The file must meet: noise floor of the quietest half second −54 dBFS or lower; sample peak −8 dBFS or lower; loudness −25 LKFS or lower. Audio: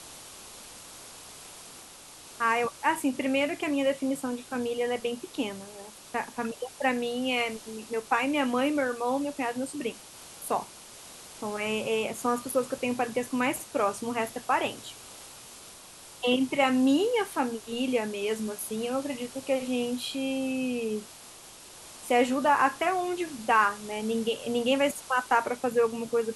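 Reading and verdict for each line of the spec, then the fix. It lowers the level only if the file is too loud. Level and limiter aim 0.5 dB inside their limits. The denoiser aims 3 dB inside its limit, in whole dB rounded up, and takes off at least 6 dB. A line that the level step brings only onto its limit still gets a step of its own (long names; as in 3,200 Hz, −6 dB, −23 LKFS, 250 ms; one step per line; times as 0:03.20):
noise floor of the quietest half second −48 dBFS: out of spec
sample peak −9.5 dBFS: in spec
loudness −28.5 LKFS: in spec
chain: broadband denoise 9 dB, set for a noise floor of −48 dBFS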